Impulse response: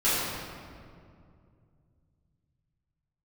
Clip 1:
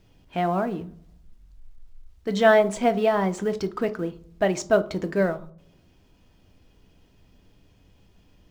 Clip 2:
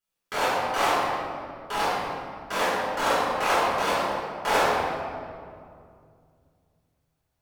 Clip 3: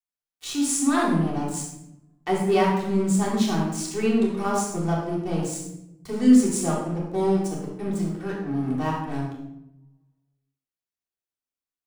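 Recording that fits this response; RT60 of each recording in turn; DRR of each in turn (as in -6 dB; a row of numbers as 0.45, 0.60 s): 2; 0.60, 2.3, 0.85 s; 8.5, -13.5, -5.0 dB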